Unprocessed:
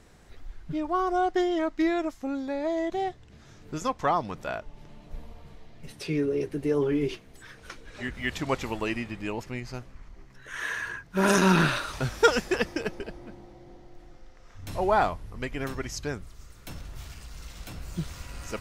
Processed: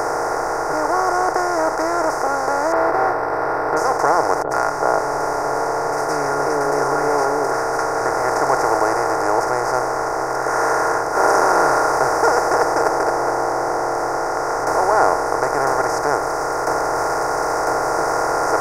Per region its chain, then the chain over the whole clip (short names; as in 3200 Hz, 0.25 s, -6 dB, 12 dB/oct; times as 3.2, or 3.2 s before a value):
2.72–3.77 CVSD 16 kbps + doubler 17 ms -4.5 dB
4.42–8.06 high shelf 12000 Hz -5 dB + comb 7.2 ms, depth 58% + three bands offset in time lows, highs, mids 90/380 ms, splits 260/1100 Hz
whole clip: per-bin compression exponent 0.2; EQ curve 140 Hz 0 dB, 200 Hz -19 dB, 290 Hz +3 dB, 620 Hz +13 dB, 950 Hz +14 dB, 2100 Hz +4 dB, 3200 Hz -30 dB, 4800 Hz +8 dB; gain -11 dB